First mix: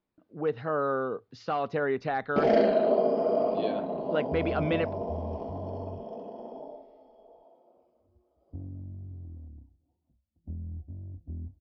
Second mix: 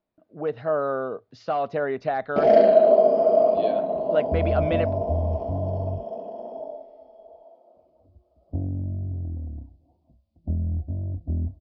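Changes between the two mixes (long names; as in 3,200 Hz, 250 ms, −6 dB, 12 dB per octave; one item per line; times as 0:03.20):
second sound +12.0 dB
master: add parametric band 640 Hz +11 dB 0.32 octaves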